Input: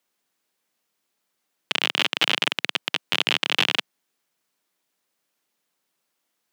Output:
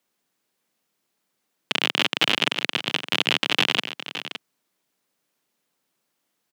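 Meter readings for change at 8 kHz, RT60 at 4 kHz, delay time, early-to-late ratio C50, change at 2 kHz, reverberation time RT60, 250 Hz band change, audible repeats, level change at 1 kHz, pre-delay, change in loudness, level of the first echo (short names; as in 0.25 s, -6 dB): +0.5 dB, none, 0.565 s, none, +0.5 dB, none, +4.5 dB, 1, +1.0 dB, none, 0.0 dB, -11.5 dB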